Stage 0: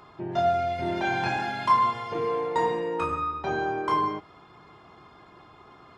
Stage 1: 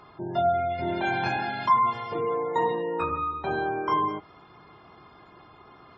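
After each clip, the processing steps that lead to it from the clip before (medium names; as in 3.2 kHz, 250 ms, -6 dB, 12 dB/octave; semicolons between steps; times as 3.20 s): spectral gate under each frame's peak -30 dB strong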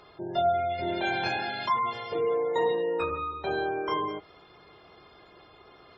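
ten-band graphic EQ 125 Hz -6 dB, 250 Hz -6 dB, 500 Hz +5 dB, 1 kHz -7 dB, 4 kHz +5 dB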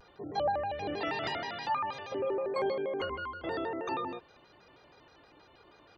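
vibrato with a chosen wave square 6.3 Hz, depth 250 cents; trim -5.5 dB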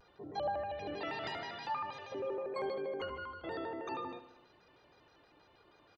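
feedback delay 73 ms, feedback 59%, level -13 dB; trim -6 dB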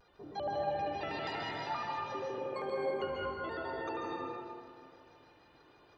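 plate-style reverb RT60 2.1 s, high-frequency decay 0.55×, pre-delay 120 ms, DRR -2 dB; trim -1.5 dB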